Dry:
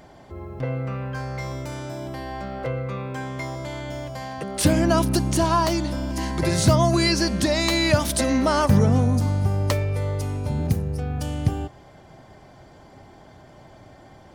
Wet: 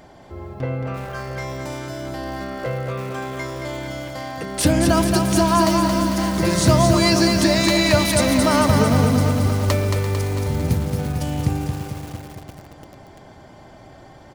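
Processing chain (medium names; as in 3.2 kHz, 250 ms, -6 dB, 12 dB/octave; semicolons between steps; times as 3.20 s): hum notches 50/100/150/200 Hz; feedback delay 224 ms, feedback 57%, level -5 dB; bit-crushed delay 341 ms, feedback 80%, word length 5-bit, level -12 dB; trim +2 dB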